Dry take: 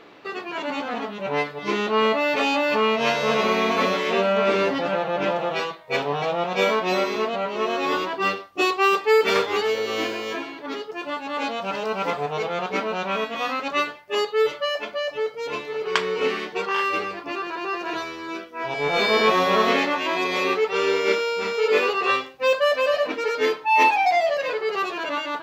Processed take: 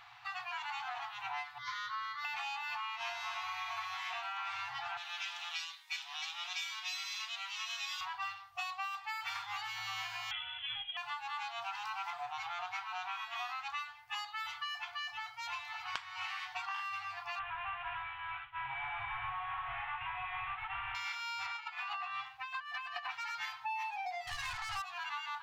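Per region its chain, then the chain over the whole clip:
1.58–2.25 s: Butterworth band-stop 820 Hz, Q 5 + static phaser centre 2.6 kHz, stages 6
4.97–8.01 s: band-pass filter 4.9 kHz, Q 0.87 + tilt EQ +4 dB/octave + band-stop 4.4 kHz, Q 15
10.31–10.97 s: distance through air 120 m + frequency inversion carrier 3.7 kHz
17.39–20.95 s: CVSD coder 16 kbps + short-mantissa float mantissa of 8-bit
21.46–23.11 s: tone controls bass -6 dB, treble -11 dB + compressor with a negative ratio -28 dBFS
24.27–24.82 s: overdrive pedal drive 24 dB, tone 2.7 kHz, clips at -13.5 dBFS + tone controls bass +6 dB, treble +7 dB
whole clip: FFT band-reject 130–690 Hz; compression 12:1, threshold -32 dBFS; trim -5 dB

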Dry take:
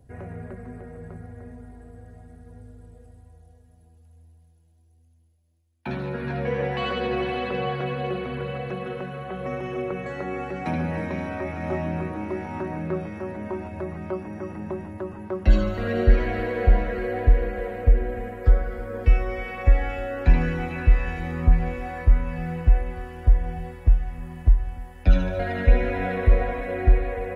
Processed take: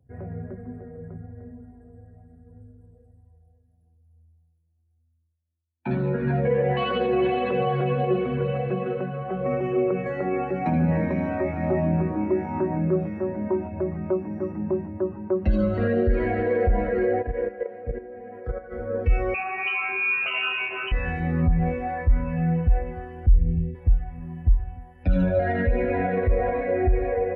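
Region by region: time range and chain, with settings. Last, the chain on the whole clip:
17.22–18.72 s: bass shelf 110 Hz -12 dB + level held to a coarse grid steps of 10 dB
19.34–20.92 s: zero-crossing glitches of -20 dBFS + high-pass 290 Hz + frequency inversion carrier 3 kHz
23.26–23.75 s: Butterworth band-stop 1 kHz, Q 0.56 + tilt EQ -1.5 dB/octave
whole clip: high-pass 74 Hz 12 dB/octave; loudness maximiser +19.5 dB; spectral contrast expander 1.5:1; trim -7 dB

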